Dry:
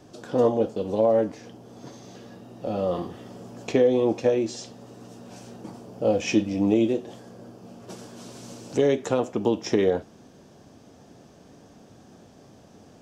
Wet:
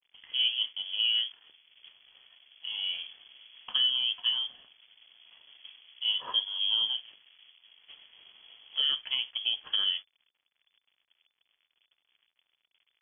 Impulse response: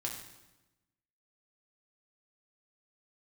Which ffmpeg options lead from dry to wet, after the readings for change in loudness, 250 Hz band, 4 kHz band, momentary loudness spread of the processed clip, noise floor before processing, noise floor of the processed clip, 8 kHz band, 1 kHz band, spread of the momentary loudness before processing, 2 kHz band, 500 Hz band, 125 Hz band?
-4.0 dB, under -40 dB, +16.5 dB, 10 LU, -52 dBFS, -82 dBFS, under -35 dB, -16.0 dB, 21 LU, -2.5 dB, under -35 dB, under -35 dB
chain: -af "aeval=exprs='sgn(val(0))*max(abs(val(0))-0.00501,0)':c=same,lowpass=f=3000:t=q:w=0.5098,lowpass=f=3000:t=q:w=0.6013,lowpass=f=3000:t=q:w=0.9,lowpass=f=3000:t=q:w=2.563,afreqshift=-3500,bandreject=f=50:t=h:w=6,bandreject=f=100:t=h:w=6,volume=0.422"

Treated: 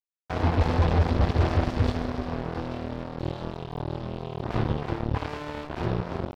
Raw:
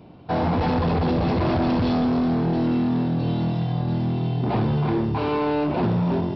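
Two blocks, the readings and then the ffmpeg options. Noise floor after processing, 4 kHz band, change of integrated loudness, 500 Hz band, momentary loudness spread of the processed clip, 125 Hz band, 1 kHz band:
-45 dBFS, -3.5 dB, -5.5 dB, -6.0 dB, 12 LU, -3.5 dB, -5.5 dB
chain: -af "lowshelf=f=110:t=q:w=1.5:g=9.5,aeval=exprs='0.422*(cos(1*acos(clip(val(0)/0.422,-1,1)))-cos(1*PI/2))+0.0299*(cos(5*acos(clip(val(0)/0.422,-1,1)))-cos(5*PI/2))+0.0841*(cos(7*acos(clip(val(0)/0.422,-1,1)))-cos(7*PI/2))':c=same,aeval=exprs='sgn(val(0))*max(abs(val(0))-0.02,0)':c=same,volume=0.596"

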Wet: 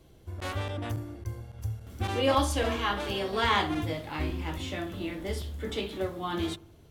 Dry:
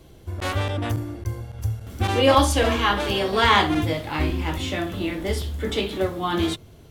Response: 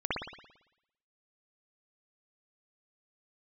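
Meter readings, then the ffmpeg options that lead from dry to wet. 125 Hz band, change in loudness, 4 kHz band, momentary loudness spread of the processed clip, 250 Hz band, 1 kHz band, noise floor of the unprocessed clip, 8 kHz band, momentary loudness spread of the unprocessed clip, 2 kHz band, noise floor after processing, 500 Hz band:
-8.0 dB, -8.5 dB, -8.5 dB, 12 LU, -8.0 dB, -8.5 dB, -47 dBFS, -8.5 dB, 13 LU, -8.5 dB, -55 dBFS, -8.0 dB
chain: -filter_complex "[0:a]asplit=2[s0][s1];[1:a]atrim=start_sample=2205,lowpass=1600[s2];[s1][s2]afir=irnorm=-1:irlink=0,volume=0.0473[s3];[s0][s3]amix=inputs=2:normalize=0,volume=0.376"

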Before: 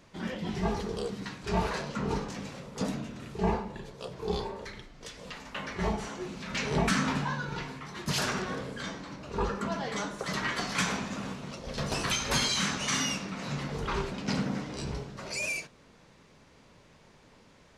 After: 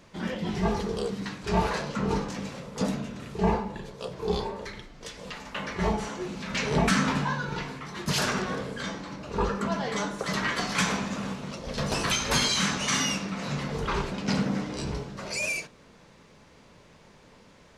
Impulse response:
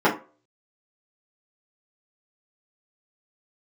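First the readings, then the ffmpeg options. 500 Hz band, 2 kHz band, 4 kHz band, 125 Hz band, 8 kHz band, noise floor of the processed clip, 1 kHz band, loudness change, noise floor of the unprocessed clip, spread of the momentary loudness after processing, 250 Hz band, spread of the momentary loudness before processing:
+4.0 dB, +3.0 dB, +3.0 dB, +3.5 dB, +3.0 dB, -55 dBFS, +3.5 dB, +3.5 dB, -58 dBFS, 12 LU, +4.0 dB, 12 LU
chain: -filter_complex "[0:a]asplit=2[s0][s1];[1:a]atrim=start_sample=2205[s2];[s1][s2]afir=irnorm=-1:irlink=0,volume=0.02[s3];[s0][s3]amix=inputs=2:normalize=0,volume=1.41"

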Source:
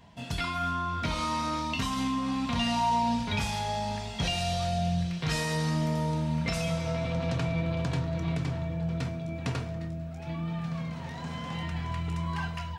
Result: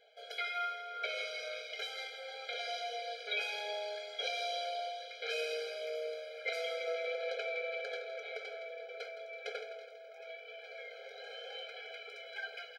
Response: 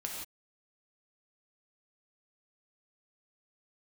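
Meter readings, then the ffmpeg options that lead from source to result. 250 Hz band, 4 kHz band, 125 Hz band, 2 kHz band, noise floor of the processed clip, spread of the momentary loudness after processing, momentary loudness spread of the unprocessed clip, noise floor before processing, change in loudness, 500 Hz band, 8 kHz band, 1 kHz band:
under -40 dB, -4.5 dB, under -40 dB, -2.5 dB, -52 dBFS, 11 LU, 7 LU, -39 dBFS, -9.0 dB, -2.5 dB, -13.5 dB, -12.5 dB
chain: -af "equalizer=f=250:t=o:w=1:g=7,equalizer=f=500:t=o:w=1:g=8,equalizer=f=1000:t=o:w=1:g=-8,equalizer=f=2000:t=o:w=1:g=10,equalizer=f=4000:t=o:w=1:g=6,equalizer=f=8000:t=o:w=1:g=-10,aecho=1:1:164|328|492|656|820|984:0.266|0.149|0.0834|0.0467|0.0262|0.0147,afftfilt=real='re*eq(mod(floor(b*sr/1024/420),2),1)':imag='im*eq(mod(floor(b*sr/1024/420),2),1)':win_size=1024:overlap=0.75,volume=0.447"

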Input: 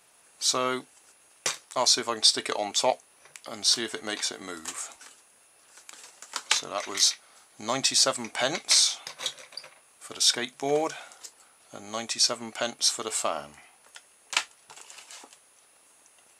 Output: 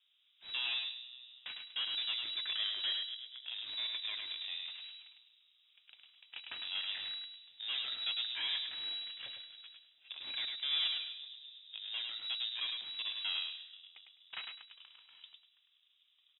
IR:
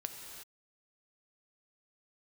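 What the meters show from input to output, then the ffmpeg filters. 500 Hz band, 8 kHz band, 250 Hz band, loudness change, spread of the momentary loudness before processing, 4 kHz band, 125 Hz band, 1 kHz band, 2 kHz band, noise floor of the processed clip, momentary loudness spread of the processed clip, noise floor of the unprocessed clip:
under -30 dB, under -40 dB, under -30 dB, -11.5 dB, 19 LU, -7.5 dB, under -25 dB, -23.5 dB, -9.5 dB, -72 dBFS, 18 LU, -60 dBFS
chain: -filter_complex "[0:a]asplit=2[s0][s1];[s1]asplit=5[s2][s3][s4][s5][s6];[s2]adelay=240,afreqshift=-51,volume=0.1[s7];[s3]adelay=480,afreqshift=-102,volume=0.0617[s8];[s4]adelay=720,afreqshift=-153,volume=0.0385[s9];[s5]adelay=960,afreqshift=-204,volume=0.0237[s10];[s6]adelay=1200,afreqshift=-255,volume=0.0148[s11];[s7][s8][s9][s10][s11]amix=inputs=5:normalize=0[s12];[s0][s12]amix=inputs=2:normalize=0,aeval=exprs='(tanh(39.8*val(0)+0.35)-tanh(0.35))/39.8':c=same,adynamicsmooth=sensitivity=4:basefreq=600,asplit=2[s13][s14];[s14]adelay=103,lowpass=f=3000:p=1,volume=0.668,asplit=2[s15][s16];[s16]adelay=103,lowpass=f=3000:p=1,volume=0.24,asplit=2[s17][s18];[s18]adelay=103,lowpass=f=3000:p=1,volume=0.24[s19];[s15][s17][s19]amix=inputs=3:normalize=0[s20];[s13][s20]amix=inputs=2:normalize=0,lowpass=f=3300:t=q:w=0.5098,lowpass=f=3300:t=q:w=0.6013,lowpass=f=3300:t=q:w=0.9,lowpass=f=3300:t=q:w=2.563,afreqshift=-3900"

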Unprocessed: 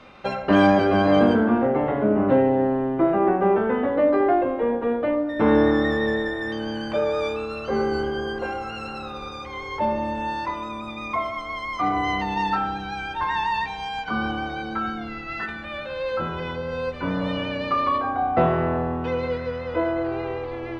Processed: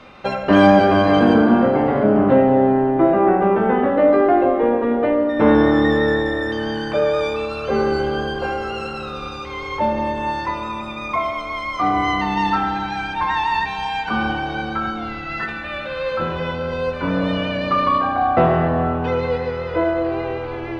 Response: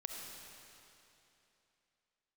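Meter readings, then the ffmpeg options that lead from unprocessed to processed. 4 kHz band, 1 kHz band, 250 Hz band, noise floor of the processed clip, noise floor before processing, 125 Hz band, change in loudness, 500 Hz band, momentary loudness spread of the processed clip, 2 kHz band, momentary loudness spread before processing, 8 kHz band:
+4.5 dB, +5.0 dB, +5.0 dB, -29 dBFS, -34 dBFS, +5.5 dB, +5.0 dB, +4.5 dB, 12 LU, +4.5 dB, 12 LU, no reading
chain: -filter_complex "[0:a]asplit=2[s0][s1];[1:a]atrim=start_sample=2205[s2];[s1][s2]afir=irnorm=-1:irlink=0,volume=1.19[s3];[s0][s3]amix=inputs=2:normalize=0,volume=0.891"

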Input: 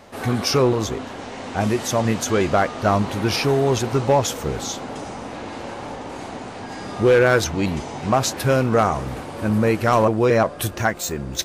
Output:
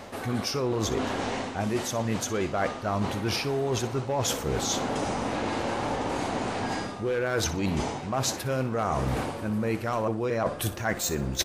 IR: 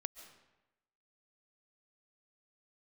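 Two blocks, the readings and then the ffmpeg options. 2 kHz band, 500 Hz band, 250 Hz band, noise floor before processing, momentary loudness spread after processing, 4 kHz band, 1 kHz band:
-7.5 dB, -9.0 dB, -7.0 dB, -35 dBFS, 3 LU, -4.5 dB, -7.0 dB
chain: -af "areverse,acompressor=threshold=0.0355:ratio=12,areverse,aecho=1:1:61|122|183:0.188|0.0546|0.0158,volume=1.68"

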